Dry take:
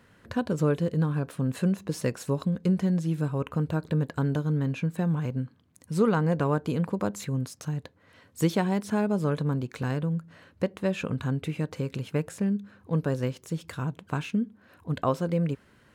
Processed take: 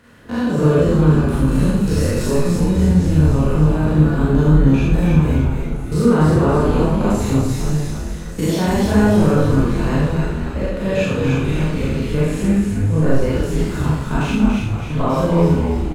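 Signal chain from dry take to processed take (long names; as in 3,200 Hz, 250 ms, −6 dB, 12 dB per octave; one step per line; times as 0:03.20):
spectrum averaged block by block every 100 ms
brickwall limiter −19.5 dBFS, peak gain reduction 4.5 dB
on a send: echo with shifted repeats 287 ms, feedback 53%, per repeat −99 Hz, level −3.5 dB
on the sum: four-comb reverb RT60 0.66 s, combs from 26 ms, DRR −5.5 dB
level +7 dB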